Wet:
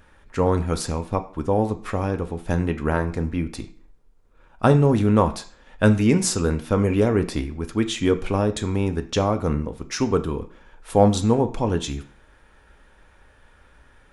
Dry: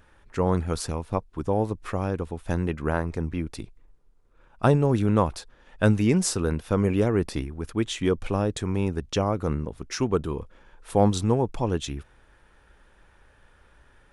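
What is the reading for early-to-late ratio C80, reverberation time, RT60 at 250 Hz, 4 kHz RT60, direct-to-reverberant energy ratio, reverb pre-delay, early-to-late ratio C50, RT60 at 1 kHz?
18.5 dB, 0.50 s, 0.45 s, 0.40 s, 7.0 dB, 3 ms, 14.5 dB, 0.50 s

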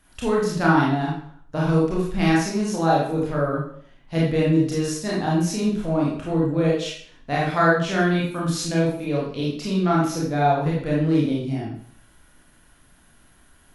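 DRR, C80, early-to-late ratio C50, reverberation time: -5.5 dB, 6.0 dB, 1.0 dB, 0.55 s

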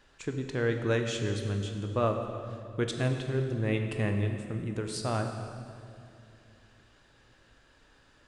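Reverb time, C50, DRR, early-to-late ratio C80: 2.5 s, 5.5 dB, 4.0 dB, 6.5 dB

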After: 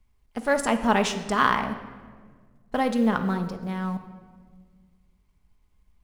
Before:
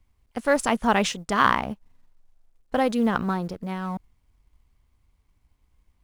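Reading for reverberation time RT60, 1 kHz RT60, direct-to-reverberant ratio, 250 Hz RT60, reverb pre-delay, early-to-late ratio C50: 1.6 s, 1.4 s, 6.0 dB, 2.2 s, 5 ms, 10.0 dB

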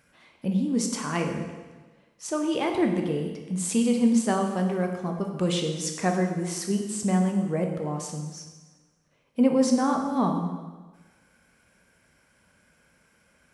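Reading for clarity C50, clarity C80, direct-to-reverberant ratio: 5.5 dB, 7.0 dB, 2.5 dB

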